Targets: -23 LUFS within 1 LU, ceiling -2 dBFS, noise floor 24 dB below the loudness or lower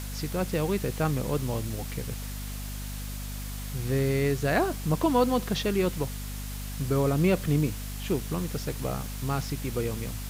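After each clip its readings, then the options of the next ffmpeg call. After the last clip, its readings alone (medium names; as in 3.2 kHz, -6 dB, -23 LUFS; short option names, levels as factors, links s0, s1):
hum 50 Hz; highest harmonic 250 Hz; hum level -34 dBFS; noise floor -36 dBFS; noise floor target -53 dBFS; loudness -29.0 LUFS; peak level -12.0 dBFS; loudness target -23.0 LUFS
-> -af "bandreject=f=50:t=h:w=6,bandreject=f=100:t=h:w=6,bandreject=f=150:t=h:w=6,bandreject=f=200:t=h:w=6,bandreject=f=250:t=h:w=6"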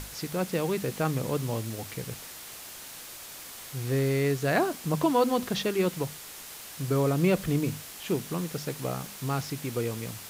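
hum not found; noise floor -44 dBFS; noise floor target -53 dBFS
-> -af "afftdn=nr=9:nf=-44"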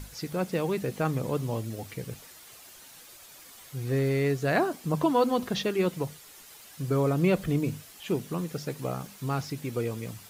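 noise floor -50 dBFS; noise floor target -53 dBFS
-> -af "afftdn=nr=6:nf=-50"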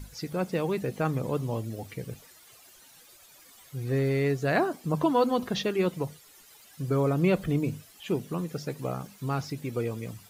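noise floor -55 dBFS; loudness -29.5 LUFS; peak level -12.0 dBFS; loudness target -23.0 LUFS
-> -af "volume=2.11"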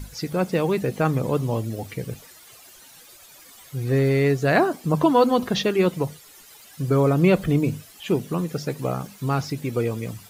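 loudness -23.0 LUFS; peak level -5.5 dBFS; noise floor -48 dBFS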